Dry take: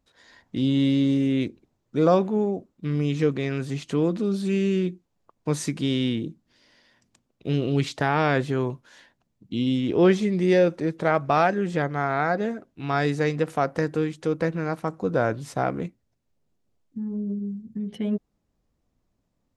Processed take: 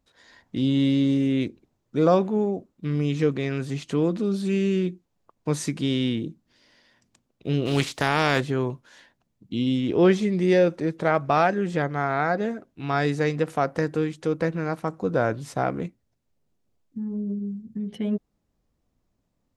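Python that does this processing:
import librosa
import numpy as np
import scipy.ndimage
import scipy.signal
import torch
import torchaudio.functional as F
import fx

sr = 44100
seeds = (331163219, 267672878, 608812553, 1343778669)

y = fx.spec_flatten(x, sr, power=0.65, at=(7.65, 8.39), fade=0.02)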